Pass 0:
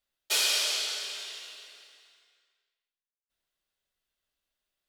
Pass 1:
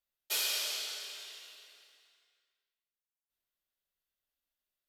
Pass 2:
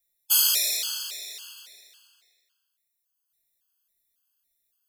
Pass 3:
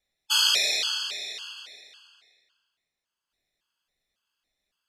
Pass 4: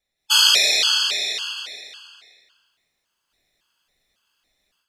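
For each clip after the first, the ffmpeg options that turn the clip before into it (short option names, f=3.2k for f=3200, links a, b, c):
-af "equalizer=f=13k:t=o:w=0.28:g=11,volume=-7.5dB"
-af "acrusher=bits=4:mode=log:mix=0:aa=0.000001,crystalizer=i=3.5:c=0,afftfilt=real='re*gt(sin(2*PI*1.8*pts/sr)*(1-2*mod(floor(b*sr/1024/860),2)),0)':imag='im*gt(sin(2*PI*1.8*pts/sr)*(1-2*mod(floor(b*sr/1024/860),2)),0)':win_size=1024:overlap=0.75,volume=3.5dB"
-af "lowpass=3.6k,volume=8.5dB"
-af "dynaudnorm=f=150:g=3:m=11dB"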